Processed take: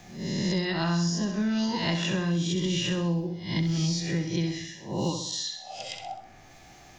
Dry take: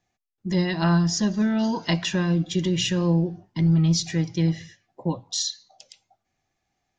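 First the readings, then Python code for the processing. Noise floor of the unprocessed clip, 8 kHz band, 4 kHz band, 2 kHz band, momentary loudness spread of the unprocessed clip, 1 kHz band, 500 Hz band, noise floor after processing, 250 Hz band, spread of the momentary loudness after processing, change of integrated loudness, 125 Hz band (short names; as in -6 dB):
-79 dBFS, -4.0 dB, -2.0 dB, -1.5 dB, 9 LU, -2.5 dB, -3.5 dB, -51 dBFS, -4.5 dB, 10 LU, -5.0 dB, -5.5 dB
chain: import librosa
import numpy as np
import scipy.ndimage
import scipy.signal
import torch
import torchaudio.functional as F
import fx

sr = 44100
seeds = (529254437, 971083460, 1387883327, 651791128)

p1 = fx.spec_swells(x, sr, rise_s=0.5)
p2 = p1 + fx.room_flutter(p1, sr, wall_m=11.0, rt60_s=0.49, dry=0)
p3 = fx.band_squash(p2, sr, depth_pct=100)
y = p3 * 10.0 ** (-6.5 / 20.0)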